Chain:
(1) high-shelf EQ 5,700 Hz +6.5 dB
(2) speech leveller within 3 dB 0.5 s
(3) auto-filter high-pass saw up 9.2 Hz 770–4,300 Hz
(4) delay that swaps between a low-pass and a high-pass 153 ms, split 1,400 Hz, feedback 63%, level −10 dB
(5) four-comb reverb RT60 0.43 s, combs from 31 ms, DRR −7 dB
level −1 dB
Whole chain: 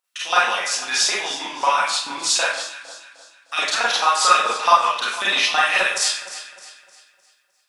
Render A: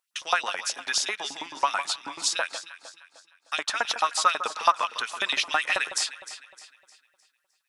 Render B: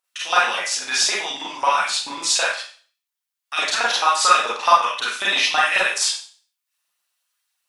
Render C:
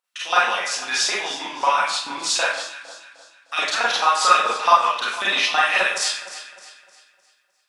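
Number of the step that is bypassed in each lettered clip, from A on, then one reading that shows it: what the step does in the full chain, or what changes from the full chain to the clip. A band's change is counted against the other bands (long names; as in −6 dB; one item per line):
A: 5, change in crest factor +4.5 dB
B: 4, change in momentary loudness spread −4 LU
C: 1, 8 kHz band −3.5 dB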